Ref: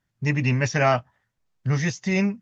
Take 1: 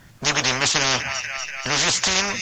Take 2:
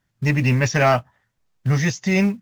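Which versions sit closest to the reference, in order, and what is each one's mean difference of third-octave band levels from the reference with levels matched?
2, 1; 2.5 dB, 12.5 dB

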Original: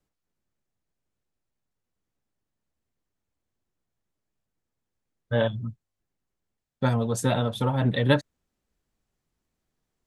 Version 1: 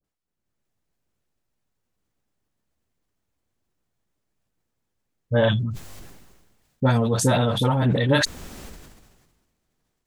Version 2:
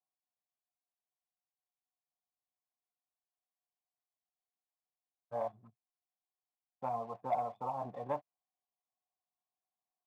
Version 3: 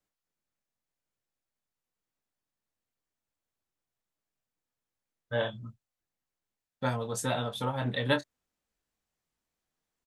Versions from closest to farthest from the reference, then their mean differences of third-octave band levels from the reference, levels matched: 3, 1, 2; 3.0 dB, 4.5 dB, 8.0 dB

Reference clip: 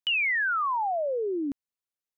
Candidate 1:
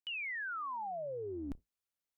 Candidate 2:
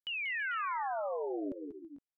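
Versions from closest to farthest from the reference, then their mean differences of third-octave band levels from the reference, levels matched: 1, 2; 4.0 dB, 5.5 dB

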